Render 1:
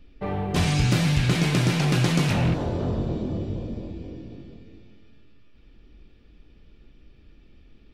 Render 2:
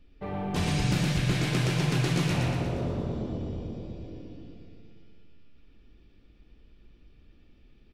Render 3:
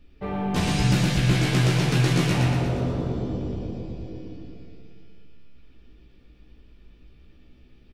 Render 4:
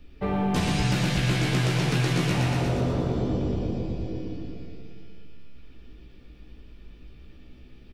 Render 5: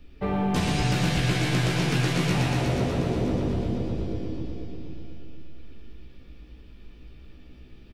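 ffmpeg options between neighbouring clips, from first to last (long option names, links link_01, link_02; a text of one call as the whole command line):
ffmpeg -i in.wav -af "aecho=1:1:118|236|354|472|590|708|826|944:0.668|0.368|0.202|0.111|0.0612|0.0336|0.0185|0.0102,volume=-6.5dB" out.wav
ffmpeg -i in.wav -filter_complex "[0:a]asplit=2[link_01][link_02];[link_02]adelay=16,volume=-5dB[link_03];[link_01][link_03]amix=inputs=2:normalize=0,volume=3.5dB" out.wav
ffmpeg -i in.wav -filter_complex "[0:a]acrossover=split=390|4300[link_01][link_02][link_03];[link_01]acompressor=threshold=-28dB:ratio=4[link_04];[link_02]acompressor=threshold=-34dB:ratio=4[link_05];[link_03]acompressor=threshold=-45dB:ratio=4[link_06];[link_04][link_05][link_06]amix=inputs=3:normalize=0,volume=4.5dB" out.wav
ffmpeg -i in.wav -af "aecho=1:1:485|970|1455|1940:0.355|0.135|0.0512|0.0195" out.wav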